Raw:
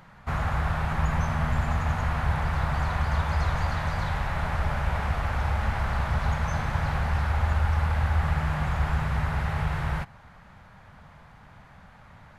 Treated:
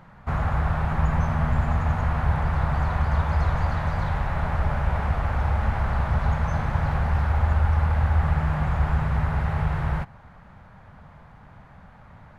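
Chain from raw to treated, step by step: treble shelf 2 kHz -10.5 dB; 6.87–7.59 s: crackle 97 per s -50 dBFS; trim +3.5 dB

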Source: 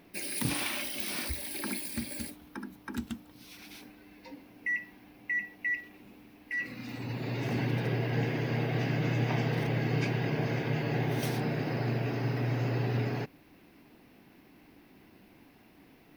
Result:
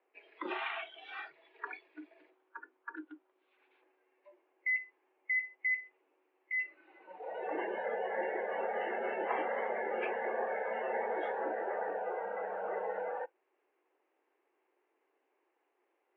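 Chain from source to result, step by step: mistuned SSB +74 Hz 230–3400 Hz; spectral noise reduction 18 dB; three-band isolator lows -16 dB, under 430 Hz, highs -15 dB, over 2.1 kHz; trim +3.5 dB

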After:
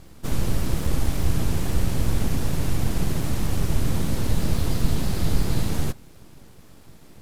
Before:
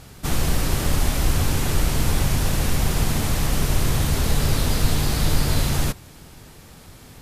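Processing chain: bass shelf 440 Hz +8.5 dB; full-wave rectifier; trim -8 dB

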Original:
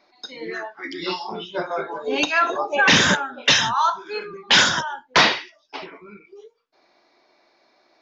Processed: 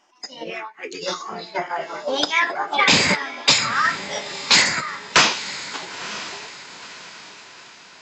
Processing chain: transient shaper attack +3 dB, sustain -1 dB; echo that smears into a reverb 960 ms, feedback 44%, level -13.5 dB; formant shift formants +5 st; trim -1 dB

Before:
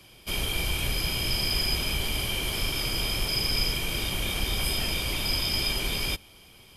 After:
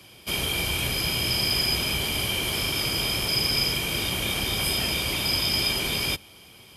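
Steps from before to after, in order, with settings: high-pass 79 Hz 12 dB/octave; trim +3.5 dB

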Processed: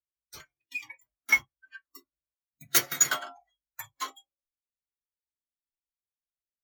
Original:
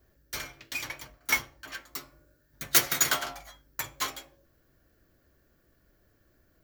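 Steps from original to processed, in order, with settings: spectral noise reduction 19 dB; spectral contrast expander 1.5:1; trim -1.5 dB

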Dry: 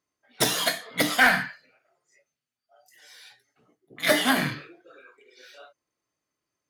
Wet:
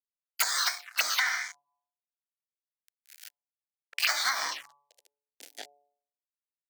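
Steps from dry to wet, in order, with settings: crossover distortion -42 dBFS; formant shift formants +4 st; high-pass sweep 1.5 kHz -> 250 Hz, 4.24–5.38 s; de-hum 143.2 Hz, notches 8; touch-sensitive phaser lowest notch 190 Hz, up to 2.7 kHz, full sweep at -22.5 dBFS; compression 6:1, threshold -28 dBFS, peak gain reduction 11 dB; bass shelf 450 Hz -6 dB; three bands compressed up and down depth 70%; trim +5.5 dB

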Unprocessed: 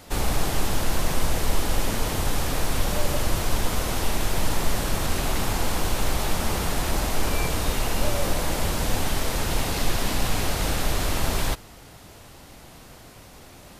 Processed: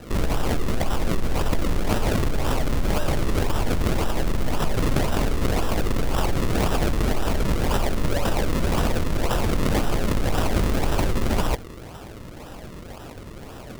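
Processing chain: low-pass 11 kHz 12 dB/octave; in parallel at +2.5 dB: compressor with a negative ratio -27 dBFS, ratio -1; on the sum: decimation with a swept rate 39×, swing 100% 1.9 Hz; trim -3 dB

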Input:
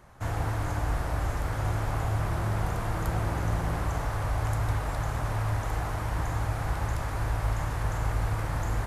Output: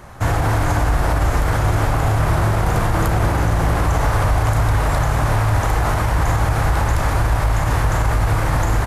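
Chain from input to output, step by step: doubling 34 ms -10.5 dB; loudness maximiser +22 dB; trim -7.5 dB

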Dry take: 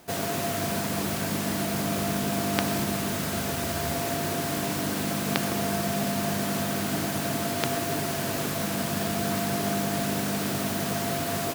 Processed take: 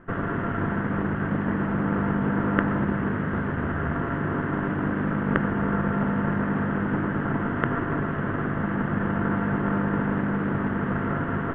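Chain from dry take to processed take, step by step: comb filter that takes the minimum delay 0.64 ms; inverse Chebyshev low-pass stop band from 4.6 kHz, stop band 50 dB; trim +5.5 dB

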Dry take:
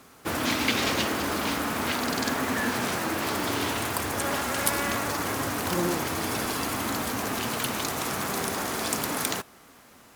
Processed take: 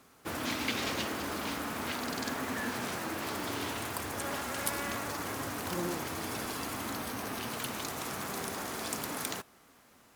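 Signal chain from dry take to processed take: 6.93–7.52 s: band-stop 7.2 kHz, Q 8.5; trim -8 dB

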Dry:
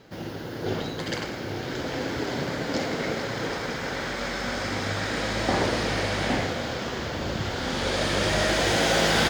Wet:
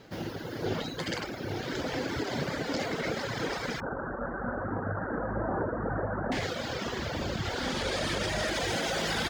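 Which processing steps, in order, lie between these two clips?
3.80–6.32 s: steep low-pass 1.6 kHz 72 dB/octave; reverb removal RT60 1.1 s; peak limiter -21.5 dBFS, peak gain reduction 8.5 dB

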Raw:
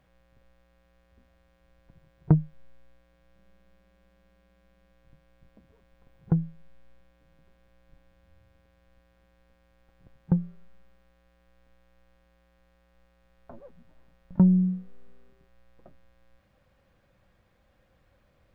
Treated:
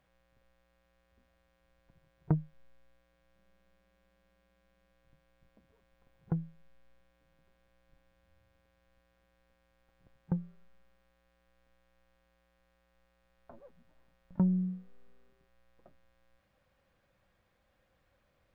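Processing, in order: bass shelf 410 Hz -5.5 dB; trim -4.5 dB

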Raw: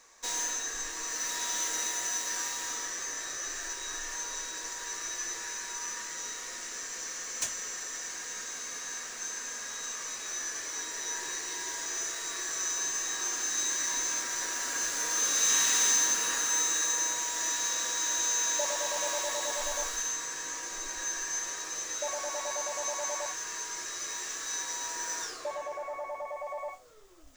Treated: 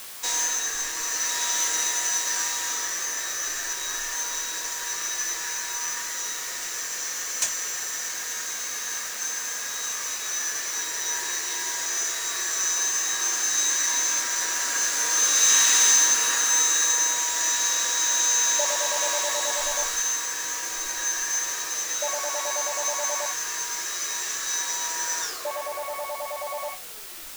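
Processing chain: in parallel at -8 dB: word length cut 6-bit, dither triangular; on the sum: bass shelf 440 Hz -8.5 dB; trim +4.5 dB

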